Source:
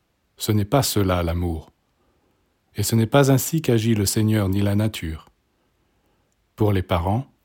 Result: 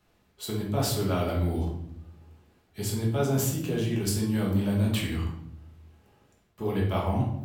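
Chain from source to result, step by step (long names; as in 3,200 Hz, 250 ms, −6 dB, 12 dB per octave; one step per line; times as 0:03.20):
reversed playback
downward compressor 6 to 1, threshold −27 dBFS, peak gain reduction 16.5 dB
reversed playback
rectangular room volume 180 cubic metres, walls mixed, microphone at 1.4 metres
level −2.5 dB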